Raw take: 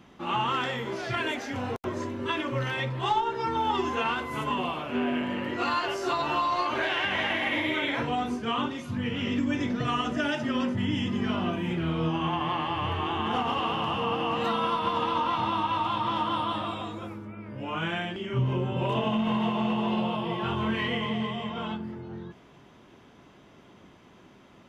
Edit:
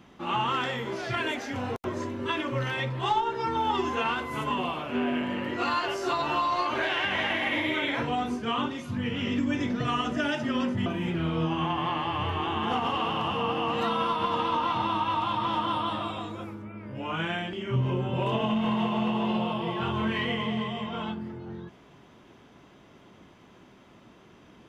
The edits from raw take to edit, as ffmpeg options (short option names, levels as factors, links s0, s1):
-filter_complex "[0:a]asplit=2[s0][s1];[s0]atrim=end=10.862[s2];[s1]atrim=start=11.488[s3];[s2][s3]acrossfade=d=0.004:c1=hsin:c2=hsin"